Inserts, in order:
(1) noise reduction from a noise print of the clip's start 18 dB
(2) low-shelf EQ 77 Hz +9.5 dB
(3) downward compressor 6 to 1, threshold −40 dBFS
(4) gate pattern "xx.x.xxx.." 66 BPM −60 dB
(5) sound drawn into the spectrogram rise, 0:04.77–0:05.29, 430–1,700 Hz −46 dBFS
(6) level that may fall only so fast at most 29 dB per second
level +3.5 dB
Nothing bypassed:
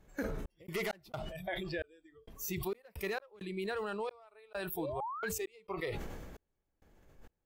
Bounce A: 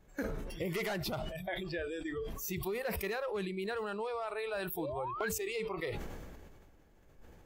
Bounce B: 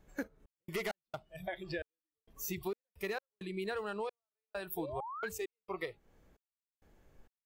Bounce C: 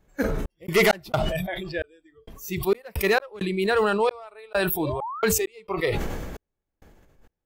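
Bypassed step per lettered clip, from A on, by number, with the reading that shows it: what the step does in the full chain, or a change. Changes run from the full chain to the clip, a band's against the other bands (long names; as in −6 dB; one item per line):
4, change in integrated loudness +2.0 LU
6, change in crest factor +2.0 dB
3, average gain reduction 11.5 dB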